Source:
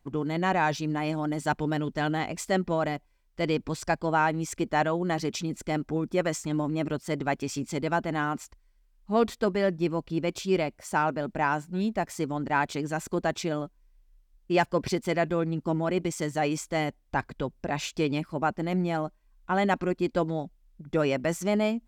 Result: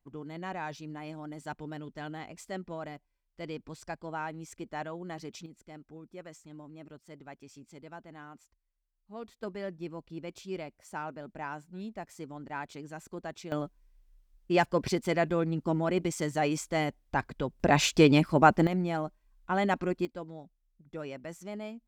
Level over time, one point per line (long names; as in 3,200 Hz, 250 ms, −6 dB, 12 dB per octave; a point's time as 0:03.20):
−12.5 dB
from 0:05.46 −19.5 dB
from 0:09.43 −12.5 dB
from 0:13.52 −1.5 dB
from 0:17.60 +7 dB
from 0:18.67 −3 dB
from 0:20.05 −14.5 dB